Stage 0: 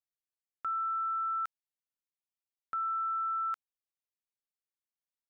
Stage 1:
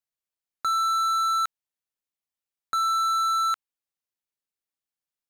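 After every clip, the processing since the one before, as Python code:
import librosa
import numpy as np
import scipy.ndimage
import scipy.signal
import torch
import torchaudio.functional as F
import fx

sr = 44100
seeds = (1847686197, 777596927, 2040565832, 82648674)

y = fx.leveller(x, sr, passes=3)
y = y * librosa.db_to_amplitude(7.5)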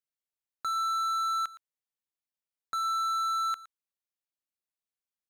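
y = x + 10.0 ** (-18.0 / 20.0) * np.pad(x, (int(115 * sr / 1000.0), 0))[:len(x)]
y = y * librosa.db_to_amplitude(-6.5)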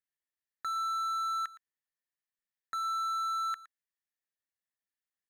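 y = fx.peak_eq(x, sr, hz=1800.0, db=14.5, octaves=0.32)
y = y * librosa.db_to_amplitude(-5.5)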